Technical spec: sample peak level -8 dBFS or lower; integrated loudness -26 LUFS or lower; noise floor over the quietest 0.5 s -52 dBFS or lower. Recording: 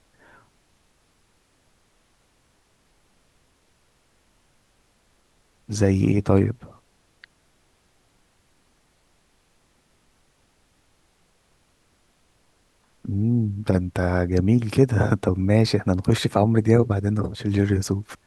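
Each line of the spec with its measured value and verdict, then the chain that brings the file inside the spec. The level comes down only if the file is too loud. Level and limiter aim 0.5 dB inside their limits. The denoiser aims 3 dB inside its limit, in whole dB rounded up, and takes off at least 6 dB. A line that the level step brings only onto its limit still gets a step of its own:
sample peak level -3.5 dBFS: fail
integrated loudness -21.5 LUFS: fail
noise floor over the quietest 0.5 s -63 dBFS: pass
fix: trim -5 dB

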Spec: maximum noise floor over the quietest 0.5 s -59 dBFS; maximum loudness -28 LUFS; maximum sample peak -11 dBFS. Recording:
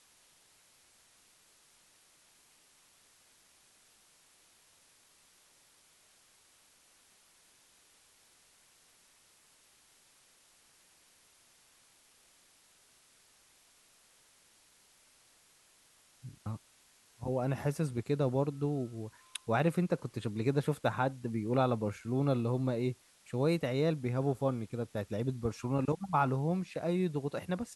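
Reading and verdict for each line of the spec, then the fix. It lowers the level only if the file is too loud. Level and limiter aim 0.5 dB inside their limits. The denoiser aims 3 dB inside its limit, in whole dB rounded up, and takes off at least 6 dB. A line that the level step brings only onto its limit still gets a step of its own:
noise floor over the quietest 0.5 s -65 dBFS: pass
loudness -33.5 LUFS: pass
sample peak -16.5 dBFS: pass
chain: none needed

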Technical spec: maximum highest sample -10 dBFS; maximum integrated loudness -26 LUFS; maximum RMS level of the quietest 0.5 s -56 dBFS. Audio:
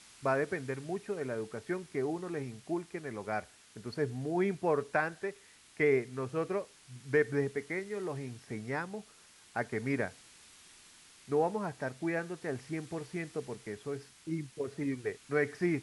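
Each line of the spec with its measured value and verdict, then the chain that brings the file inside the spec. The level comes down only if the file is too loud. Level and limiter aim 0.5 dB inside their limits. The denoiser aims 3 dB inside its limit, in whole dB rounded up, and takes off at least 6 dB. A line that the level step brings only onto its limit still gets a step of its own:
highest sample -15.5 dBFS: pass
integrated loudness -35.5 LUFS: pass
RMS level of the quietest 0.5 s -59 dBFS: pass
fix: none needed

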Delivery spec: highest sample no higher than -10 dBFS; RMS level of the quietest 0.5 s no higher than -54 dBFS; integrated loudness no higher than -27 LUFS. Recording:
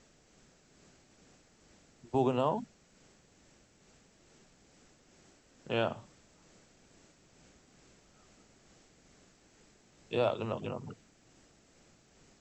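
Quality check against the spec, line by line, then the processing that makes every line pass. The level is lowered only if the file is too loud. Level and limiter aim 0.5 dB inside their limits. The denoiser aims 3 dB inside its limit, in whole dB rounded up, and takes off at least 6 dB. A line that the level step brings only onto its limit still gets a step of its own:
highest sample -16.0 dBFS: pass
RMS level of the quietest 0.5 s -64 dBFS: pass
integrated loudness -34.0 LUFS: pass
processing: none needed

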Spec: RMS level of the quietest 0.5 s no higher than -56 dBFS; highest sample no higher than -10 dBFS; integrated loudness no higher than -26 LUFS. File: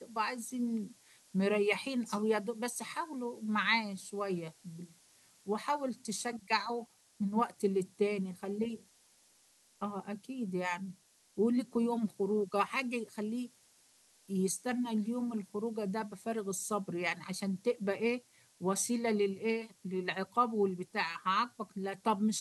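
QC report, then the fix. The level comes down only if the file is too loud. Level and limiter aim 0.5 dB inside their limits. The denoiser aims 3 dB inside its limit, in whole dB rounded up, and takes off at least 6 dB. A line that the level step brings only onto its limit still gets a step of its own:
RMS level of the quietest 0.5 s -67 dBFS: pass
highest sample -16.5 dBFS: pass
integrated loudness -35.0 LUFS: pass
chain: none needed

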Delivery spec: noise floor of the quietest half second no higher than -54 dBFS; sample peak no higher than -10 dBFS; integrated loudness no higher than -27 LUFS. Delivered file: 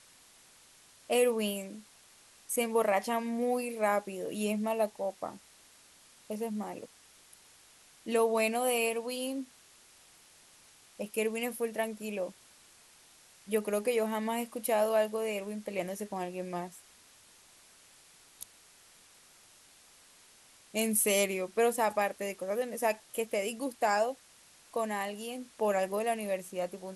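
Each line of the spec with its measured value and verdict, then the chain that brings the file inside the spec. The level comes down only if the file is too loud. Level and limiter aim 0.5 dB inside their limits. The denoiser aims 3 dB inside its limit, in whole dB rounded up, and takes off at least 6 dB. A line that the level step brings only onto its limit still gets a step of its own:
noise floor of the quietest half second -60 dBFS: pass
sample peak -14.5 dBFS: pass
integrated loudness -32.0 LUFS: pass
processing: none needed

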